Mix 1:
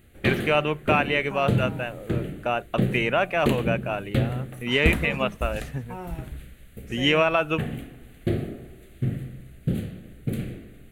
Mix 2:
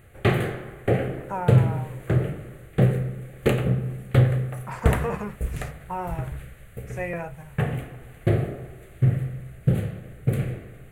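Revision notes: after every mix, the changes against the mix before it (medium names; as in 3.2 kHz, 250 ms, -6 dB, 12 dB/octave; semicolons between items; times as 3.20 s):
first voice: muted; master: add graphic EQ 125/250/500/1000/2000/4000/8000 Hz +9/-7/+6/+9/+4/-5/+3 dB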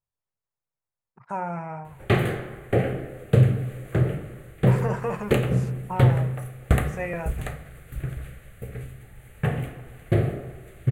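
background: entry +1.85 s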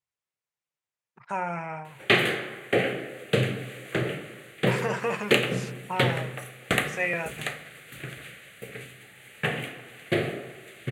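background: add high-pass 160 Hz 12 dB/octave; master: add frequency weighting D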